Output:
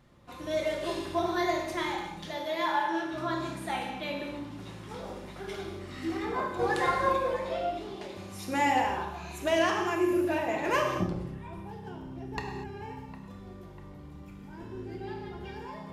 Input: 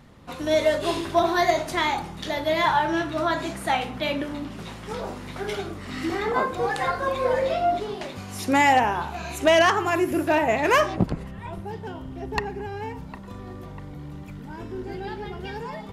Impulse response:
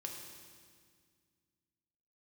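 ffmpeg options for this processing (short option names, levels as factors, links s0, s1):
-filter_complex "[0:a]asettb=1/sr,asplit=3[s0][s1][s2];[s0]atrim=end=2.264[s3];[s1]atrim=start=2.26:end=3.13,asetpts=PTS-STARTPTS,afade=t=in:d=0.004:c=qsin,afade=t=out:st=0.866:d=0.004:c=qsin,highpass=320[s4];[s2]atrim=start=3.126[s5];[s3][s4]acrossfade=d=0.004:c1=hsin:c2=qsin[s6];[s6][s5]acrossfade=d=0.004:c1=qsin:c2=hsin,asettb=1/sr,asplit=3[s7][s8][s9];[s7]atrim=end=6.594[s10];[s8]atrim=start=6.59:end=7.16,asetpts=PTS-STARTPTS,afade=t=in:d=0.004:c=qsin,afade=t=out:st=0.566:d=0.004:c=qsin,acontrast=46[s11];[s9]atrim=start=7.156[s12];[s10][s11]acrossfade=d=0.004:c1=hsin:c2=qsin[s13];[s13][s12]acrossfade=d=0.004:c1=qsin:c2=hsin[s14];[1:a]atrim=start_sample=2205,afade=t=out:st=0.3:d=0.01,atrim=end_sample=13671[s15];[s14][s15]afir=irnorm=-1:irlink=0,volume=0.501"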